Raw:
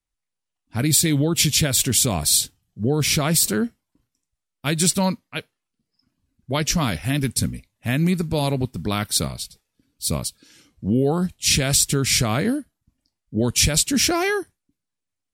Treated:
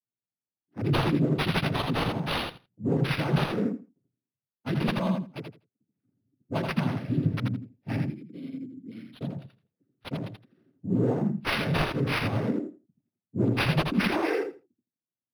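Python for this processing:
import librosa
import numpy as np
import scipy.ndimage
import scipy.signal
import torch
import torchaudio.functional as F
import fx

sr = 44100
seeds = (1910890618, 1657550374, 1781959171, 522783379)

y = fx.wiener(x, sr, points=41)
y = fx.low_shelf(y, sr, hz=460.0, db=5.0, at=(5.38, 6.58))
y = fx.spec_repair(y, sr, seeds[0], start_s=6.99, length_s=0.43, low_hz=390.0, high_hz=3900.0, source='both')
y = fx.noise_vocoder(y, sr, seeds[1], bands=16)
y = fx.vowel_filter(y, sr, vowel='i', at=(8.02, 9.21))
y = fx.echo_feedback(y, sr, ms=82, feedback_pct=16, wet_db=-4.5)
y = np.interp(np.arange(len(y)), np.arange(len(y))[::6], y[::6])
y = y * 10.0 ** (-5.0 / 20.0)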